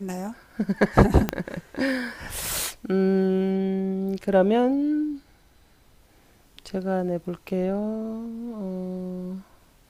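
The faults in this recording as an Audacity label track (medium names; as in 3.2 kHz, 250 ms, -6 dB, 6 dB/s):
1.290000	1.290000	pop -8 dBFS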